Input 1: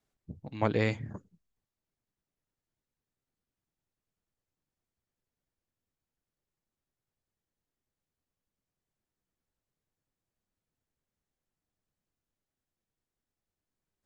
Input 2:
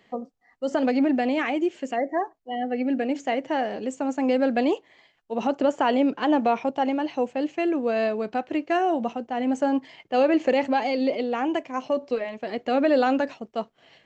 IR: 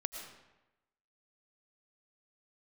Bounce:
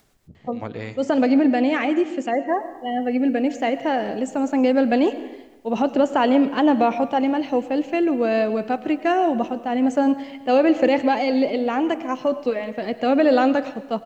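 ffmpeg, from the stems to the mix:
-filter_complex "[0:a]acompressor=mode=upward:threshold=0.0126:ratio=2.5,volume=0.422,asplit=3[s0][s1][s2];[s0]atrim=end=1,asetpts=PTS-STARTPTS,afade=t=out:st=0.996:d=0.004:c=hsin[s3];[s1]atrim=start=1:end=2.47,asetpts=PTS-STARTPTS,volume=0[s4];[s2]atrim=start=2.47,asetpts=PTS-STARTPTS,afade=t=in:d=0.004:c=hsin[s5];[s3][s4][s5]concat=n=3:v=0:a=1,asplit=2[s6][s7];[s7]volume=0.501[s8];[1:a]equalizer=f=160:w=1.1:g=5,adelay=350,volume=0.891,asplit=2[s9][s10];[s10]volume=0.631[s11];[2:a]atrim=start_sample=2205[s12];[s8][s11]amix=inputs=2:normalize=0[s13];[s13][s12]afir=irnorm=-1:irlink=0[s14];[s6][s9][s14]amix=inputs=3:normalize=0"

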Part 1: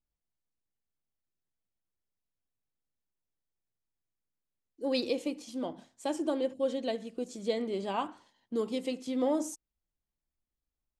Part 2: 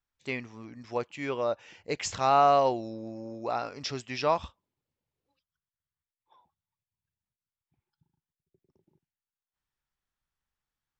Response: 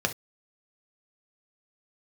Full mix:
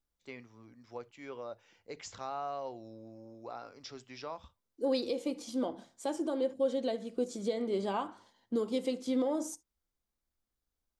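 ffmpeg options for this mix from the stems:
-filter_complex "[0:a]alimiter=level_in=1.33:limit=0.0631:level=0:latency=1:release=325,volume=0.75,volume=1.12,asplit=2[s0][s1];[s1]volume=0.15[s2];[1:a]acrossover=split=150[s3][s4];[s4]acompressor=threshold=0.0355:ratio=2[s5];[s3][s5]amix=inputs=2:normalize=0,volume=0.224,asplit=2[s6][s7];[s7]volume=0.119[s8];[2:a]atrim=start_sample=2205[s9];[s2][s8]amix=inputs=2:normalize=0[s10];[s10][s9]afir=irnorm=-1:irlink=0[s11];[s0][s6][s11]amix=inputs=3:normalize=0"

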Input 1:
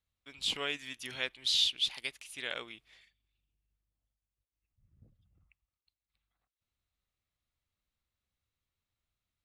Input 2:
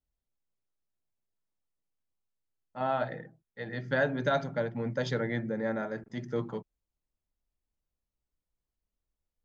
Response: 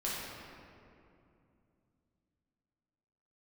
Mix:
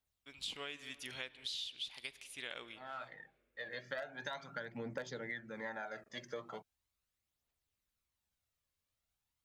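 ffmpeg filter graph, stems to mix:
-filter_complex "[0:a]acontrast=54,volume=0.299,asplit=3[s0][s1][s2];[s1]volume=0.0841[s3];[1:a]highpass=f=1200:p=1,aphaser=in_gain=1:out_gain=1:delay=1.9:decay=0.62:speed=0.4:type=triangular,volume=1.26[s4];[s2]apad=whole_len=416715[s5];[s4][s5]sidechaincompress=threshold=0.00282:ratio=12:attack=16:release=1150[s6];[2:a]atrim=start_sample=2205[s7];[s3][s7]afir=irnorm=-1:irlink=0[s8];[s0][s6][s8]amix=inputs=3:normalize=0,aeval=exprs='0.112*(abs(mod(val(0)/0.112+3,4)-2)-1)':c=same,acompressor=threshold=0.0112:ratio=16"

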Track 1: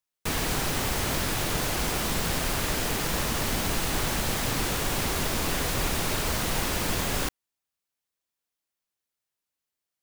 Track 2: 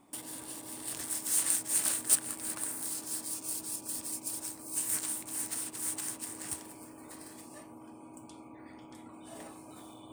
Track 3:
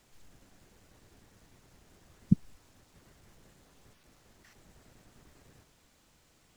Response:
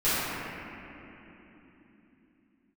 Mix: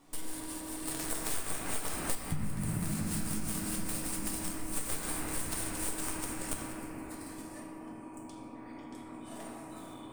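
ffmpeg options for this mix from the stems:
-filter_complex "[1:a]aeval=exprs='0.376*(cos(1*acos(clip(val(0)/0.376,-1,1)))-cos(1*PI/2))+0.119*(cos(8*acos(clip(val(0)/0.376,-1,1)))-cos(8*PI/2))':c=same,volume=0.668,asplit=2[s0][s1];[s1]volume=0.282[s2];[2:a]asubboost=boost=9:cutoff=90,flanger=delay=17.5:depth=5:speed=1.2,volume=0.531,asplit=2[s3][s4];[s4]volume=0.668[s5];[3:a]atrim=start_sample=2205[s6];[s2][s5]amix=inputs=2:normalize=0[s7];[s7][s6]afir=irnorm=-1:irlink=0[s8];[s0][s3][s8]amix=inputs=3:normalize=0,acompressor=threshold=0.0355:ratio=10"

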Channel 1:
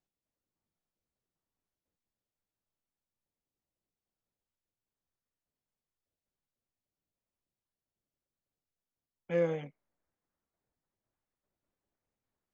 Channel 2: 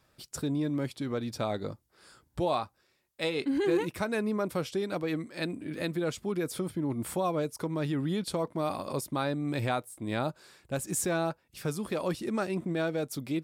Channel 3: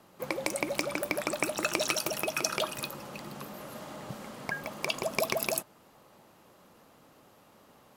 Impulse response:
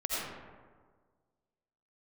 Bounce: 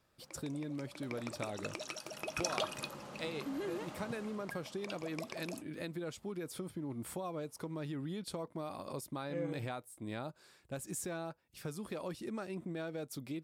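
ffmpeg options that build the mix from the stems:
-filter_complex "[0:a]volume=0.282[s0];[1:a]acompressor=threshold=0.0316:ratio=6,volume=0.447[s1];[2:a]lowpass=8900,volume=0.562,afade=t=in:st=0.87:d=0.3:silence=0.334965,afade=t=in:st=2.07:d=0.48:silence=0.354813,afade=t=out:st=4.04:d=0.59:silence=0.298538[s2];[s0][s1][s2]amix=inputs=3:normalize=0"

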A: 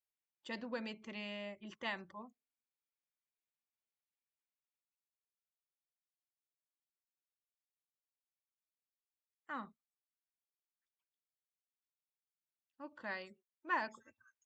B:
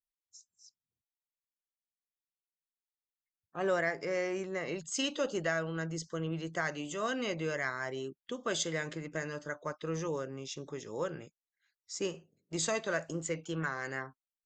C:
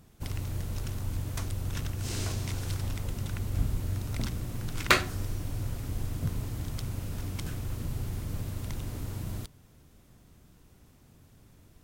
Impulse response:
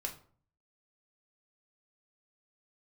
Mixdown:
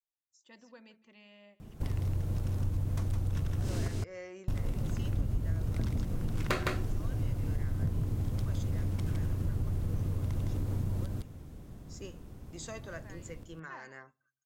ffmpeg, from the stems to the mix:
-filter_complex "[0:a]volume=0.237,asplit=2[s0][s1];[s1]volume=0.126[s2];[1:a]volume=0.251,asplit=2[s3][s4];[s4]volume=0.126[s5];[2:a]tiltshelf=f=1100:g=6,adelay=1600,volume=1.33,asplit=3[s6][s7][s8];[s6]atrim=end=3.88,asetpts=PTS-STARTPTS,afade=t=out:st=3.876:d=0.004:c=hsin[s9];[s7]atrim=start=3.88:end=4.48,asetpts=PTS-STARTPTS,volume=0[s10];[s8]atrim=start=4.48,asetpts=PTS-STARTPTS,afade=t=in:d=0.004:c=hsin[s11];[s9][s10][s11]concat=n=3:v=0:a=1,asplit=3[s12][s13][s14];[s13]volume=0.168[s15];[s14]volume=0.668[s16];[3:a]atrim=start_sample=2205[s17];[s5][s15]amix=inputs=2:normalize=0[s18];[s18][s17]afir=irnorm=-1:irlink=0[s19];[s2][s16]amix=inputs=2:normalize=0,aecho=0:1:161:1[s20];[s0][s3][s12][s19][s20]amix=inputs=5:normalize=0,asoftclip=type=hard:threshold=0.335,acompressor=threshold=0.0282:ratio=3"

